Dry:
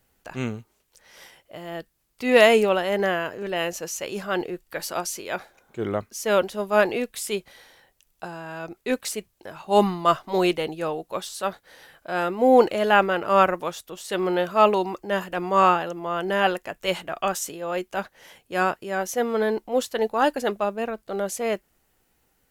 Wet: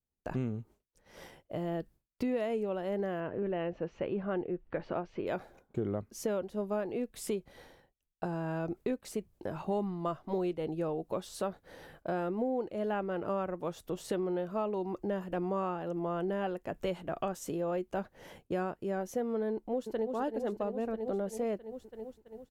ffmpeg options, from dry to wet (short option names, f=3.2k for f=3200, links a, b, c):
-filter_complex "[0:a]asettb=1/sr,asplit=3[a][b][c];[a]atrim=end=3.204[d];[b]atrim=start=3.2:end=5.27,asetpts=PTS-STARTPTS,afade=t=in:d=0.004:c=qsin,afade=t=out:st=2.066:d=0.004:c=qsin,lowpass=f=2.9k:w=0.5412,lowpass=f=2.9k:w=1.3066[e];[c]atrim=start=5.266[f];[d][e]acrossfade=d=0.004:c1=hsin:c2=qsin[g];[g][f]acrossfade=d=0.004:c1=qsin:c2=hsin,asplit=2[h][i];[i]afade=t=in:st=19.53:d=0.01,afade=t=out:st=20.11:d=0.01,aecho=0:1:330|660|990|1320|1650|1980|2310|2640|2970:0.473151|0.307548|0.199906|0.129939|0.0844605|0.0548993|0.0356845|0.023195|0.0150767[j];[h][j]amix=inputs=2:normalize=0,agate=range=-33dB:threshold=-49dB:ratio=3:detection=peak,tiltshelf=f=820:g=9,acompressor=threshold=-31dB:ratio=8"